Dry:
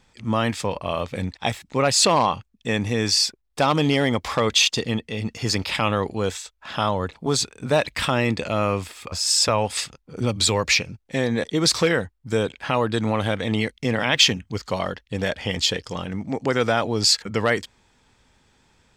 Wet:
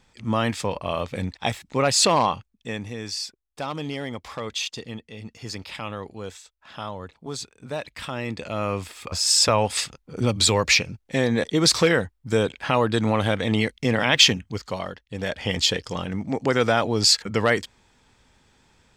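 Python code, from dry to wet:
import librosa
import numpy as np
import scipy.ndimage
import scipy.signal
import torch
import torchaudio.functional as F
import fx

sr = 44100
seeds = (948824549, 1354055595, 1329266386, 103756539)

y = fx.gain(x, sr, db=fx.line((2.26, -1.0), (2.97, -11.0), (8.0, -11.0), (9.15, 1.0), (14.3, 1.0), (15.03, -7.5), (15.49, 0.5)))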